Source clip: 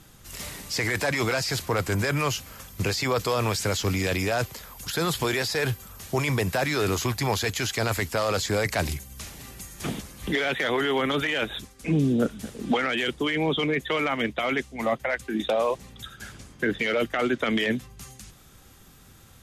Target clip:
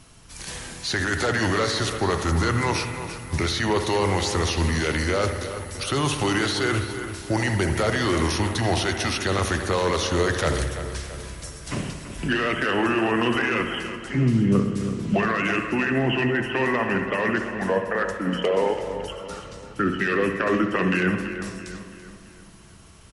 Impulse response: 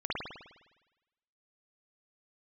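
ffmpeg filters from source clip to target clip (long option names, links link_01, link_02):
-filter_complex "[0:a]asplit=2[link_01][link_02];[1:a]atrim=start_sample=2205[link_03];[link_02][link_03]afir=irnorm=-1:irlink=0,volume=-11.5dB[link_04];[link_01][link_04]amix=inputs=2:normalize=0,asetrate=37044,aresample=44100,asplit=2[link_05][link_06];[link_06]adelay=334,lowpass=frequency=4300:poles=1,volume=-10.5dB,asplit=2[link_07][link_08];[link_08]adelay=334,lowpass=frequency=4300:poles=1,volume=0.5,asplit=2[link_09][link_10];[link_10]adelay=334,lowpass=frequency=4300:poles=1,volume=0.5,asplit=2[link_11][link_12];[link_12]adelay=334,lowpass=frequency=4300:poles=1,volume=0.5,asplit=2[link_13][link_14];[link_14]adelay=334,lowpass=frequency=4300:poles=1,volume=0.5[link_15];[link_05][link_07][link_09][link_11][link_13][link_15]amix=inputs=6:normalize=0"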